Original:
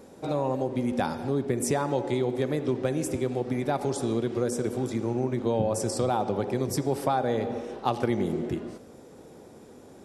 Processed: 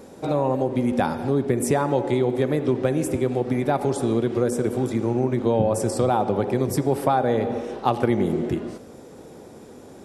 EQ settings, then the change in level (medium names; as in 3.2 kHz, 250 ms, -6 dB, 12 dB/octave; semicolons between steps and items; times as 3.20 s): dynamic bell 5.6 kHz, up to -7 dB, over -52 dBFS, Q 0.96; +5.5 dB